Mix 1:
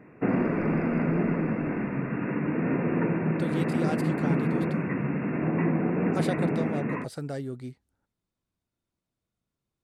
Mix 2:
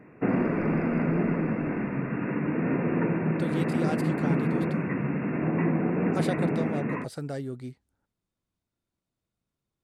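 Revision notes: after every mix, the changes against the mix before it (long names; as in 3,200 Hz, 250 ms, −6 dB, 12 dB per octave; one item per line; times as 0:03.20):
nothing changed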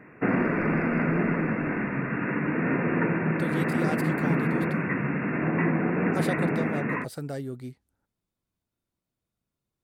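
speech: remove low-pass filter 9,500 Hz 12 dB per octave
background: add parametric band 1,700 Hz +8 dB 1.3 octaves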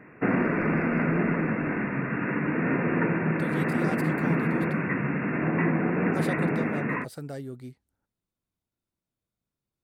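speech −3.0 dB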